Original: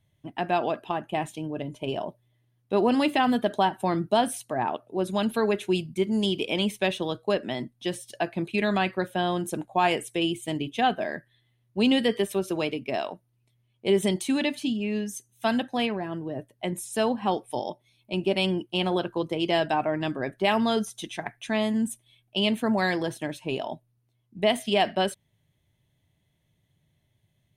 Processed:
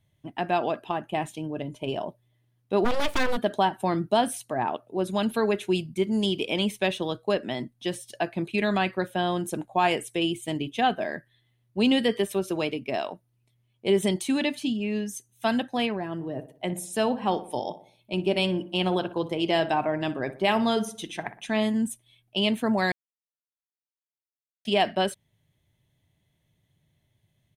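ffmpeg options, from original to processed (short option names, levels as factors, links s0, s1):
-filter_complex "[0:a]asplit=3[s0][s1][s2];[s0]afade=t=out:st=2.84:d=0.02[s3];[s1]aeval=exprs='abs(val(0))':c=same,afade=t=in:st=2.84:d=0.02,afade=t=out:st=3.36:d=0.02[s4];[s2]afade=t=in:st=3.36:d=0.02[s5];[s3][s4][s5]amix=inputs=3:normalize=0,asplit=3[s6][s7][s8];[s6]afade=t=out:st=16.18:d=0.02[s9];[s7]asplit=2[s10][s11];[s11]adelay=60,lowpass=f=2000:p=1,volume=0.224,asplit=2[s12][s13];[s13]adelay=60,lowpass=f=2000:p=1,volume=0.48,asplit=2[s14][s15];[s15]adelay=60,lowpass=f=2000:p=1,volume=0.48,asplit=2[s16][s17];[s17]adelay=60,lowpass=f=2000:p=1,volume=0.48,asplit=2[s18][s19];[s19]adelay=60,lowpass=f=2000:p=1,volume=0.48[s20];[s10][s12][s14][s16][s18][s20]amix=inputs=6:normalize=0,afade=t=in:st=16.18:d=0.02,afade=t=out:st=21.68:d=0.02[s21];[s8]afade=t=in:st=21.68:d=0.02[s22];[s9][s21][s22]amix=inputs=3:normalize=0,asplit=3[s23][s24][s25];[s23]atrim=end=22.92,asetpts=PTS-STARTPTS,afade=t=out:st=22.916:d=0.004:c=hsin[s26];[s24]atrim=start=22.92:end=24.65,asetpts=PTS-STARTPTS,volume=0[s27];[s25]atrim=start=24.65,asetpts=PTS-STARTPTS,afade=t=in:d=0.004:c=hsin[s28];[s26][s27][s28]concat=n=3:v=0:a=1"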